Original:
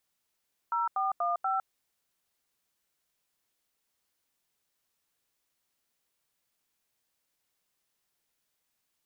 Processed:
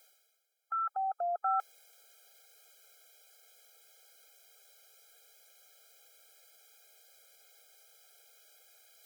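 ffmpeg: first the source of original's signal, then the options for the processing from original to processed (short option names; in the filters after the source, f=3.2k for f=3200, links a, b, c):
-f lavfi -i "aevalsrc='0.0355*clip(min(mod(t,0.241),0.157-mod(t,0.241))/0.002,0,1)*(eq(floor(t/0.241),0)*(sin(2*PI*941*mod(t,0.241))+sin(2*PI*1336*mod(t,0.241)))+eq(floor(t/0.241),1)*(sin(2*PI*770*mod(t,0.241))+sin(2*PI*1209*mod(t,0.241)))+eq(floor(t/0.241),2)*(sin(2*PI*697*mod(t,0.241))+sin(2*PI*1209*mod(t,0.241)))+eq(floor(t/0.241),3)*(sin(2*PI*770*mod(t,0.241))+sin(2*PI*1336*mod(t,0.241))))':d=0.964:s=44100"
-af "areverse,acompressor=mode=upward:threshold=-40dB:ratio=2.5,areverse,afftfilt=real='re*eq(mod(floor(b*sr/1024/420),2),1)':imag='im*eq(mod(floor(b*sr/1024/420),2),1)':win_size=1024:overlap=0.75"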